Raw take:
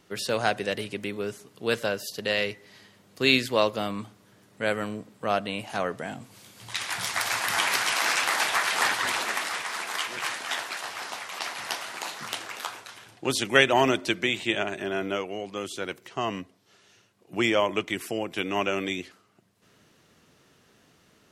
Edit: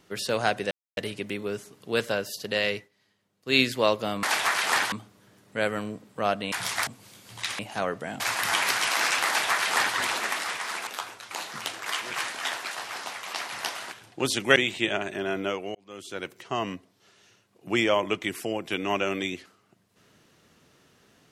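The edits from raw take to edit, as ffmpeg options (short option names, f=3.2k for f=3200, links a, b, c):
-filter_complex "[0:a]asplit=16[a][b][c][d][e][f][g][h][i][j][k][l][m][n][o][p];[a]atrim=end=0.71,asetpts=PTS-STARTPTS,afade=t=out:st=0.706:d=0.004:c=hsin,apad=pad_dur=0.26[q];[b]atrim=start=0.71:end=2.63,asetpts=PTS-STARTPTS,afade=t=in:d=0.004:c=hsin,afade=t=out:st=1.77:d=0.15:c=qsin:silence=0.141254[r];[c]atrim=start=2.63:end=3.19,asetpts=PTS-STARTPTS,volume=-17dB[s];[d]atrim=start=3.19:end=3.972,asetpts=PTS-STARTPTS,afade=t=in:d=0.15:c=qsin:silence=0.141254[t];[e]atrim=start=8.318:end=9.012[u];[f]atrim=start=3.968:end=5.572[v];[g]atrim=start=6.898:end=7.252[w];[h]atrim=start=6.178:end=6.902[x];[i]atrim=start=5.568:end=6.182[y];[j]atrim=start=7.248:end=9.922[z];[k]atrim=start=12.528:end=12.972[aa];[l]atrim=start=11.978:end=12.532[ab];[m]atrim=start=9.918:end=11.982[ac];[n]atrim=start=12.968:end=13.612[ad];[o]atrim=start=14.218:end=15.41,asetpts=PTS-STARTPTS,afade=t=out:st=1.188:d=0.004:c=hsin[ae];[p]atrim=start=15.41,asetpts=PTS-STARTPTS,afade=t=in:d=0.55[af];[q][r][s][t]concat=n=4:v=0:a=1[ag];[ag][u]acrossfade=d=0.004:c1=hsin:c2=hsin[ah];[ah][v]acrossfade=d=0.004:c1=hsin:c2=hsin[ai];[ai][w]acrossfade=d=0.004:c1=hsin:c2=hsin[aj];[aj][x]acrossfade=d=0.004:c1=hsin:c2=hsin[ak];[ak][y]acrossfade=d=0.004:c1=hsin:c2=hsin[al];[al][z]acrossfade=d=0.004:c1=hsin:c2=hsin[am];[am][aa]acrossfade=d=0.004:c1=hsin:c2=hsin[an];[an][ab]acrossfade=d=0.004:c1=hsin:c2=hsin[ao];[ao][ac]acrossfade=d=0.004:c1=hsin:c2=hsin[ap];[ap][ad]acrossfade=d=0.004:c1=hsin:c2=hsin[aq];[ae][af]concat=n=2:v=0:a=1[ar];[aq][ar]acrossfade=d=0.004:c1=hsin:c2=hsin"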